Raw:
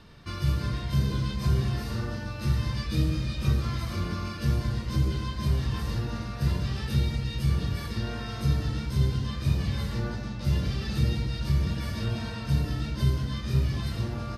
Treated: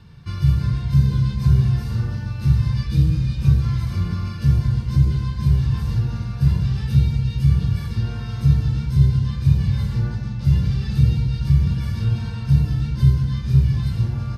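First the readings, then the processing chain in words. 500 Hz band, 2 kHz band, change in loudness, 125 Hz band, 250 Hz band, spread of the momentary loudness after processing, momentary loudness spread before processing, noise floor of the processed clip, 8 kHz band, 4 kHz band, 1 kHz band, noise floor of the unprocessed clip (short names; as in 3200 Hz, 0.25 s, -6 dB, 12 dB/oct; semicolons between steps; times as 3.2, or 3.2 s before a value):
-2.5 dB, -1.0 dB, +9.0 dB, +10.0 dB, +7.0 dB, 6 LU, 5 LU, -29 dBFS, n/a, -1.5 dB, -1.0 dB, -36 dBFS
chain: resonant low shelf 200 Hz +9.5 dB, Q 1.5; notch comb 630 Hz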